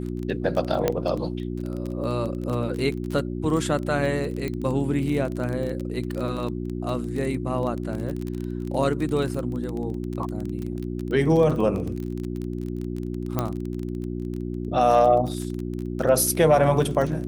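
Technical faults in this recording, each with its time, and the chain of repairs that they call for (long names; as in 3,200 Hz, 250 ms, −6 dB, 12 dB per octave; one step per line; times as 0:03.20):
surface crackle 23 per second −28 dBFS
mains hum 60 Hz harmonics 6 −30 dBFS
0:00.88: click −8 dBFS
0:04.48: click −17 dBFS
0:13.39: click −10 dBFS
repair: click removal
hum removal 60 Hz, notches 6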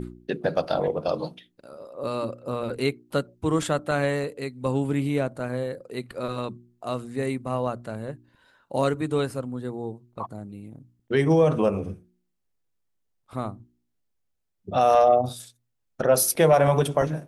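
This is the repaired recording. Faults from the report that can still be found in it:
0:00.88: click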